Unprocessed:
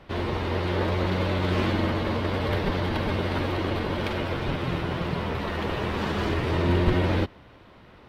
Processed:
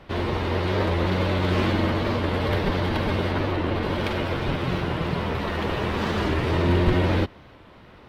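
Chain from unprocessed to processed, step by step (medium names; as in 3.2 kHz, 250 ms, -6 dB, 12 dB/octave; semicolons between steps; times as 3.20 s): 3.31–3.83 s: treble shelf 4.3 kHz -7.5 dB; in parallel at -10 dB: hard clipper -19 dBFS, distortion -17 dB; on the sum: warped record 45 rpm, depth 100 cents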